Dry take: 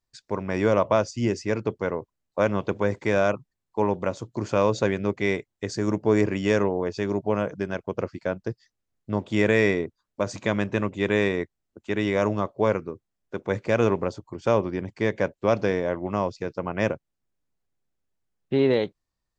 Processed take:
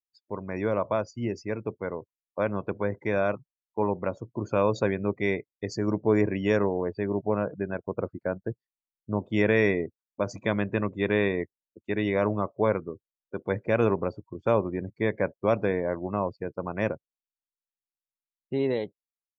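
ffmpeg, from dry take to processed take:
-filter_complex "[0:a]asettb=1/sr,asplit=3[a][b][c];[a]atrim=end=6.574[d];[b]atrim=start=6.57:end=9.26,asetpts=PTS-STARTPTS,afade=t=in:d=0.004:c=qsin,afade=t=out:st=2.686:d=0.004:c=qsin,equalizer=f=6.4k:t=o:w=1.1:g=-13[e];[c]atrim=start=9.256[f];[d][e]acrossfade=d=0.004:c1=hsin:c2=qsin[g];[g][f]acrossfade=d=0.004:c1=qsin:c2=hsin,afftdn=nr=29:nf=-38,dynaudnorm=f=940:g=7:m=5dB,adynamicequalizer=threshold=0.0158:dfrequency=2900:dqfactor=0.7:tfrequency=2900:tqfactor=0.7:attack=5:release=100:ratio=0.375:range=2:mode=cutabove:tftype=highshelf,volume=-6dB"

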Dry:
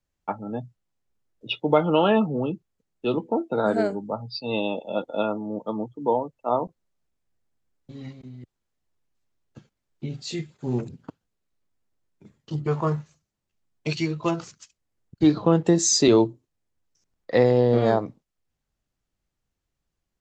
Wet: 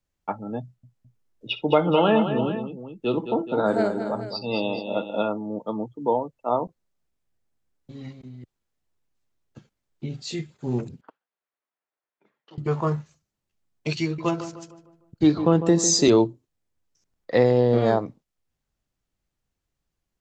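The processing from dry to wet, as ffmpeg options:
-filter_complex "[0:a]asettb=1/sr,asplit=3[a][b][c];[a]atrim=end=0.624[d];[b]atrim=start=0.62:end=5.29,asetpts=PTS-STARTPTS,afade=t=in:d=0.004:c=qsin,afade=t=out:st=4.666:d=0.004:c=qsin,aecho=1:1:57|63|213|425:0.126|0.112|0.355|0.237,atrim=end_sample=205947[e];[c]atrim=start=5.286[f];[d][e]acrossfade=d=0.004:c1=hsin:c2=qsin[g];[g][f]acrossfade=d=0.004:c1=qsin:c2=hsin,asettb=1/sr,asplit=3[h][i][j];[h]atrim=end=11.014[k];[i]atrim=start=11.01:end=12.58,asetpts=PTS-STARTPTS,afade=t=in:d=0.004:c=qsin,afade=t=out:st=1.566:d=0.004:c=qsin,highpass=710,lowpass=2.2k[l];[j]atrim=start=12.576[m];[k][l]acrossfade=d=0.004:c1=hsin:c2=qsin[n];[n][m]acrossfade=d=0.004:c1=qsin:c2=hsin,asettb=1/sr,asplit=3[o][p][q];[o]atrim=end=14.034[r];[p]atrim=start=14.03:end=16.1,asetpts=PTS-STARTPTS,afade=t=in:d=0.004:c=qsin,afade=t=out:st=2.066:d=0.004:c=qsin,asplit=2[s][t];[t]adelay=152,lowpass=f=1.8k:p=1,volume=-10.5dB,asplit=2[u][v];[v]adelay=152,lowpass=f=1.8k:p=1,volume=0.46,asplit=2[w][x];[x]adelay=152,lowpass=f=1.8k:p=1,volume=0.46,asplit=2[y][z];[z]adelay=152,lowpass=f=1.8k:p=1,volume=0.46,asplit=2[aa][ab];[ab]adelay=152,lowpass=f=1.8k:p=1,volume=0.46[ac];[s][u][w][y][aa][ac]amix=inputs=6:normalize=0,atrim=end_sample=91287[ad];[q]atrim=start=16.096[ae];[r][ad]acrossfade=d=0.004:c1=hsin:c2=qsin[af];[af][ae]acrossfade=d=0.004:c1=qsin:c2=hsin"

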